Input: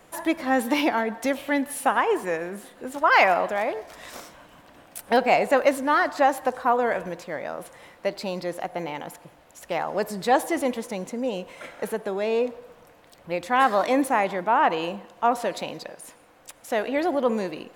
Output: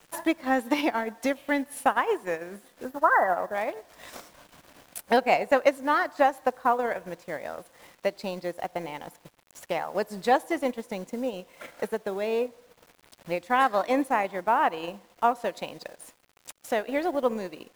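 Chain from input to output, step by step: spectral delete 2.85–3.55, 2000–11000 Hz; requantised 8-bit, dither none; transient shaper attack +4 dB, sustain -8 dB; gain -4 dB

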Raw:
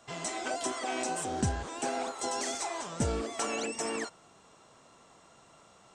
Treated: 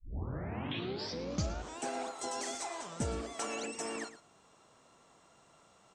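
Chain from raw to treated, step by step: tape start at the beginning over 1.78 s; on a send: echo 0.114 s -14 dB; on the sum: gain -5 dB

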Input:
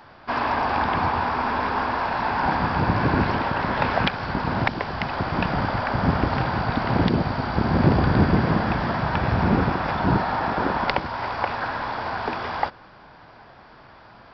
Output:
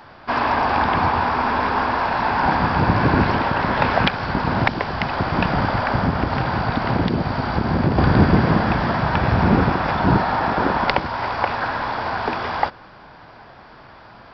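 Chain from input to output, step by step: 5.96–7.98 compressor 2.5:1, threshold -21 dBFS, peak gain reduction 6.5 dB; gain +4 dB

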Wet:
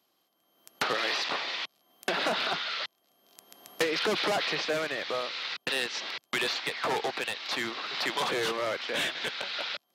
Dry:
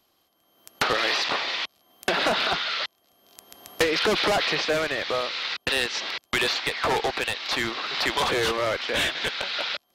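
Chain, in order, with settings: HPF 130 Hz 24 dB/oct; gain -5.5 dB

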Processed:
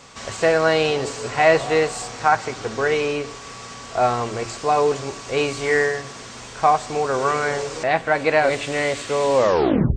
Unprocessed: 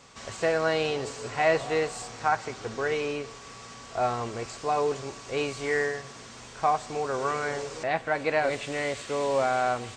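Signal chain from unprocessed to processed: tape stop at the end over 0.61 s; de-hum 57.4 Hz, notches 7; gain +8 dB

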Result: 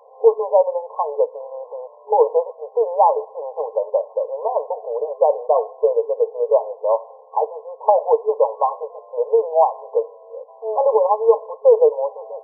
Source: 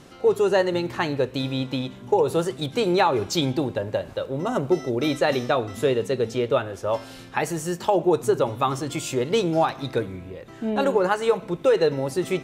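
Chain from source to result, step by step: FFT band-pass 420–1100 Hz; gain +7 dB

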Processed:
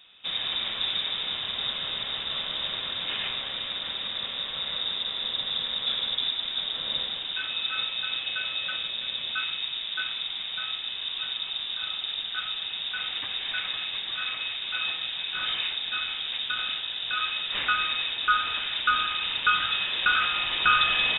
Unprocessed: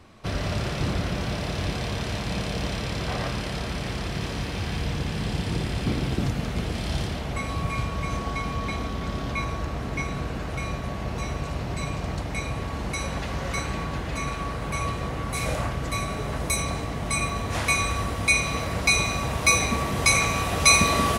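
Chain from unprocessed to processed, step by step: dynamic EQ 1700 Hz, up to +4 dB, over -35 dBFS, Q 0.71; inverted band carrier 3700 Hz; gain -4 dB

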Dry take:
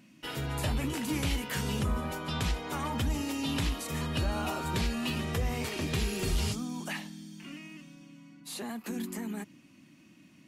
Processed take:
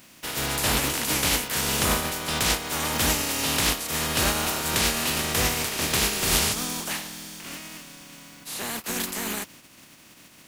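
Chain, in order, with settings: spectral contrast lowered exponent 0.39; gain +6.5 dB

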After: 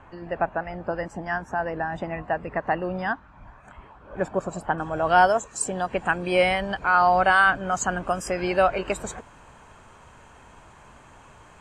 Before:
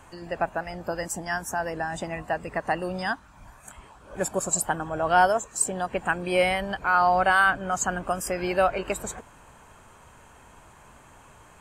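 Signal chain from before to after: LPF 2200 Hz 12 dB/oct, from 4.78 s 6800 Hz; gain +2 dB

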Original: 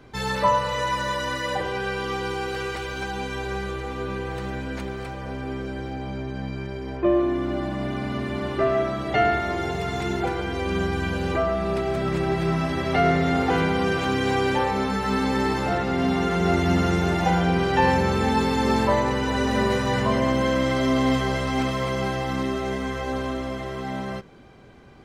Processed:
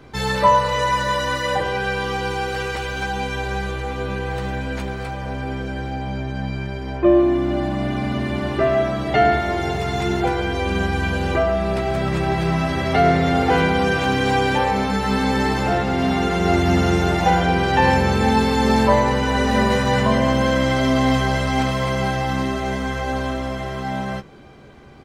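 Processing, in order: 15.61–16.13 hard clip -16.5 dBFS, distortion -38 dB; doubler 14 ms -8 dB; gain +4 dB

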